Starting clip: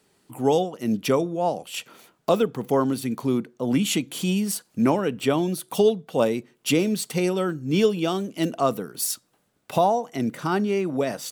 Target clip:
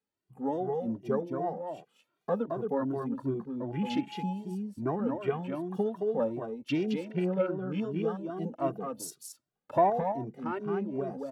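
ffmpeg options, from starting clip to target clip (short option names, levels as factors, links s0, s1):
-filter_complex "[0:a]afwtdn=0.0251,aemphasis=mode=reproduction:type=cd,asettb=1/sr,asplit=3[s0][s1][s2];[s0]atrim=end=3.654[s3];[s1]atrim=start=3.65:end=4.33,asetpts=PTS-STARTPTS,afade=t=in:d=0.004:c=qsin,afade=t=out:st=0.676:d=0.004:c=qsin,aeval=exprs='val(0)+0.0224*sin(2*PI*840*n/s)':c=same[s4];[s2]atrim=start=4.326[s5];[s3][s4]acrossfade=d=0.004:c1=hsin:c2=qsin[s6];[s6][s5]acrossfade=d=0.004:c1=qsin:c2=hsin,asplit=3[s7][s8][s9];[s7]afade=t=out:st=7.09:d=0.02[s10];[s8]highpass=110,equalizer=f=190:t=q:w=4:g=5,equalizer=f=560:t=q:w=4:g=7,equalizer=f=1600:t=q:w=4:g=5,lowpass=f=4700:w=0.5412,lowpass=f=4700:w=1.3066,afade=t=in:st=7.09:d=0.02,afade=t=out:st=7.6:d=0.02[s11];[s9]afade=t=in:st=7.6:d=0.02[s12];[s10][s11][s12]amix=inputs=3:normalize=0,asettb=1/sr,asplit=3[s13][s14][s15];[s13]atrim=end=8.984[s16];[s14]atrim=start=8.98:end=9.9,asetpts=PTS-STARTPTS,afade=t=in:d=0.004:c=qsin,afade=t=out:st=0.916:d=0.004:c=qsin,acontrast=45[s17];[s15]atrim=start=9.896[s18];[s16][s17]acrossfade=d=0.004:c1=hsin:c2=qsin[s19];[s19][s18]acrossfade=d=0.004:c1=qsin:c2=hsin,aecho=1:1:219:0.562,asplit=2[s20][s21];[s21]adelay=2,afreqshift=2.6[s22];[s20][s22]amix=inputs=2:normalize=1,volume=0.447"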